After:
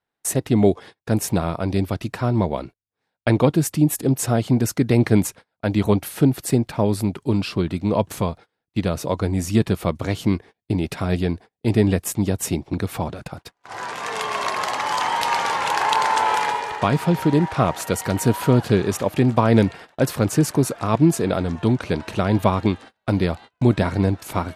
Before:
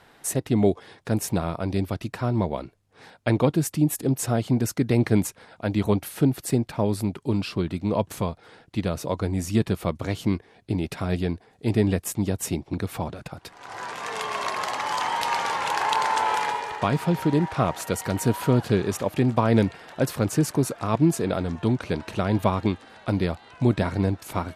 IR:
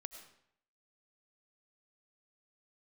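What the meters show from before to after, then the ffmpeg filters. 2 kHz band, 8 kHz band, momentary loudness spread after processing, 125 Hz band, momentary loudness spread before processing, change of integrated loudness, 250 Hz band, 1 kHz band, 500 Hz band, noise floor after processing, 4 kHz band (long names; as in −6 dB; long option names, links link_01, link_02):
+4.0 dB, +4.0 dB, 9 LU, +4.0 dB, 9 LU, +4.0 dB, +4.0 dB, +4.0 dB, +4.0 dB, −79 dBFS, +4.0 dB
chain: -af "agate=range=-33dB:threshold=-40dB:ratio=16:detection=peak,volume=4dB"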